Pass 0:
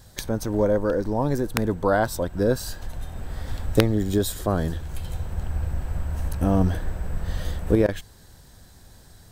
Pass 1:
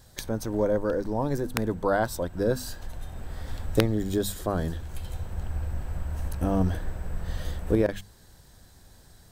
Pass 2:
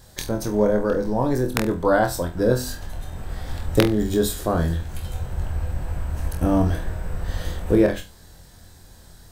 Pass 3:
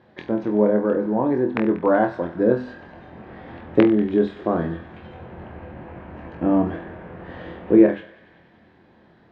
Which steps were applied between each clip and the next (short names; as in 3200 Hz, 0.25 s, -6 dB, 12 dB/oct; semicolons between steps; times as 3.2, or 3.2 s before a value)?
notches 50/100/150/200/250 Hz; gain -3.5 dB
flutter echo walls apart 4.1 m, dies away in 0.26 s; gain +4.5 dB
speaker cabinet 190–2500 Hz, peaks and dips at 220 Hz +5 dB, 340 Hz +6 dB, 1400 Hz -4 dB; thinning echo 95 ms, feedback 81%, high-pass 770 Hz, level -15.5 dB